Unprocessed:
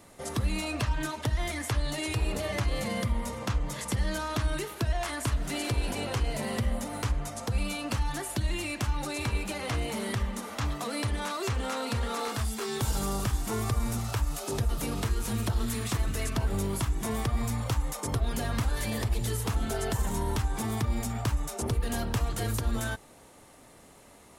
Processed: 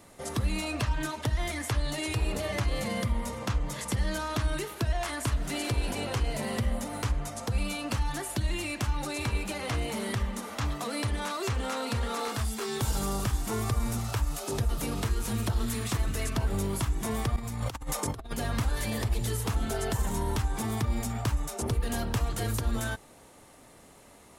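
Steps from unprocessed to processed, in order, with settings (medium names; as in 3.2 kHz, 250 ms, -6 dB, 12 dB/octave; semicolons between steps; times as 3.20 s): 17.36–18.38 s: compressor with a negative ratio -33 dBFS, ratio -0.5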